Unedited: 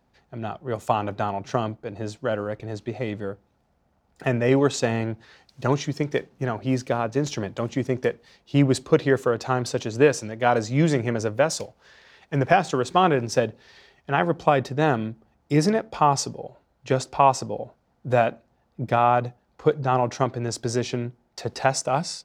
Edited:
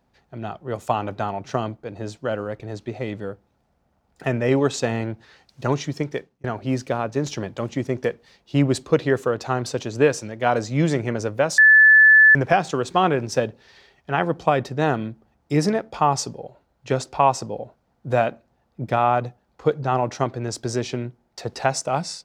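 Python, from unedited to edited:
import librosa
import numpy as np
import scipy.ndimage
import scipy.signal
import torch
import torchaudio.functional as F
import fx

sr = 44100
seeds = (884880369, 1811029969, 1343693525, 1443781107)

y = fx.edit(x, sr, fx.fade_out_span(start_s=6.02, length_s=0.42),
    fx.bleep(start_s=11.58, length_s=0.77, hz=1740.0, db=-8.0), tone=tone)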